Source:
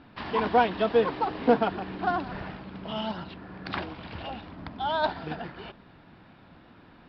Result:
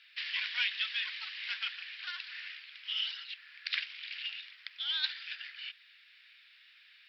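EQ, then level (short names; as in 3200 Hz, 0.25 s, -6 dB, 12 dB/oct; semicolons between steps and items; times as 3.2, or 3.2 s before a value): steep high-pass 2000 Hz 36 dB/oct; +6.5 dB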